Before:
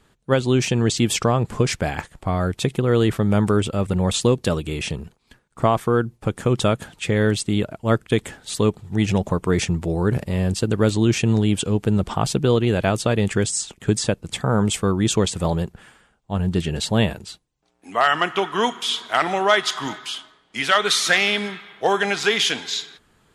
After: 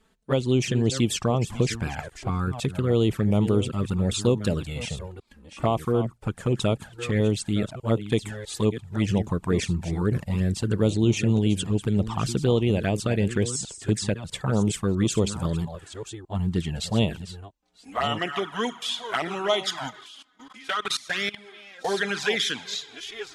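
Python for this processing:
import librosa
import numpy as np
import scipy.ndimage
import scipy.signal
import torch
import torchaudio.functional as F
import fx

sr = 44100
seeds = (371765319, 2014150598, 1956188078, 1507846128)

y = fx.reverse_delay(x, sr, ms=650, wet_db=-11.5)
y = fx.level_steps(y, sr, step_db=20, at=(19.89, 21.87), fade=0.02)
y = fx.env_flanger(y, sr, rest_ms=4.6, full_db=-13.5)
y = y * 10.0 ** (-3.0 / 20.0)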